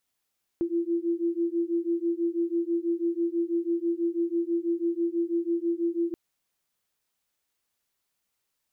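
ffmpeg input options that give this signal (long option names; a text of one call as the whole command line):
ffmpeg -f lavfi -i "aevalsrc='0.0422*(sin(2*PI*336*t)+sin(2*PI*342.1*t))':duration=5.53:sample_rate=44100" out.wav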